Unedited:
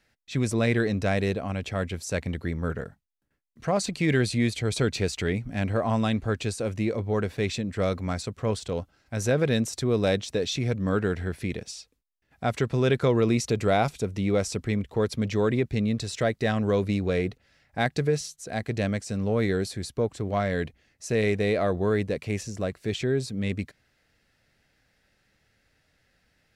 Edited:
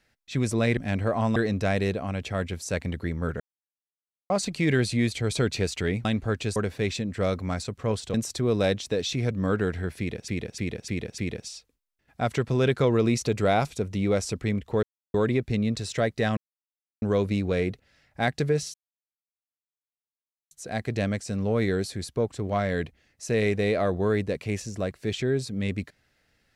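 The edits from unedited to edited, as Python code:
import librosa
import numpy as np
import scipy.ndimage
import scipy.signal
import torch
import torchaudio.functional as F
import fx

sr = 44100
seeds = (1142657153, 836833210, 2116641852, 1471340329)

y = fx.edit(x, sr, fx.silence(start_s=2.81, length_s=0.9),
    fx.move(start_s=5.46, length_s=0.59, to_s=0.77),
    fx.cut(start_s=6.56, length_s=0.59),
    fx.cut(start_s=8.73, length_s=0.84),
    fx.repeat(start_s=11.41, length_s=0.3, count=5),
    fx.silence(start_s=15.06, length_s=0.31),
    fx.insert_silence(at_s=16.6, length_s=0.65),
    fx.insert_silence(at_s=18.32, length_s=1.77), tone=tone)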